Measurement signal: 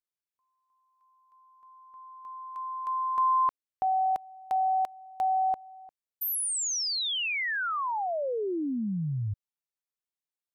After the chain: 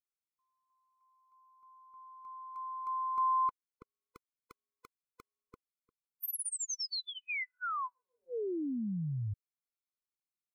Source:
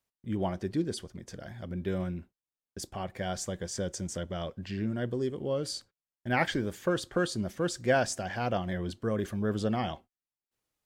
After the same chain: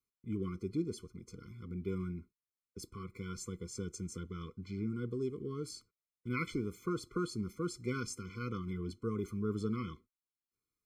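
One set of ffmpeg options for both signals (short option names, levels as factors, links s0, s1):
-af "bandreject=f=3200:w=5.5,afftfilt=real='re*eq(mod(floor(b*sr/1024/500),2),0)':imag='im*eq(mod(floor(b*sr/1024/500),2),0)':win_size=1024:overlap=0.75,volume=0.562"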